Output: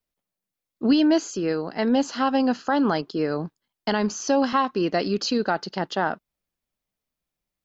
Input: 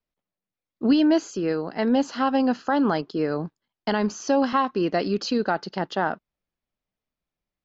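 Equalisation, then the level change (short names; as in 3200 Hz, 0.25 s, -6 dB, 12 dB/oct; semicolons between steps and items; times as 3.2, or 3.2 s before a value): high shelf 5000 Hz +8 dB; 0.0 dB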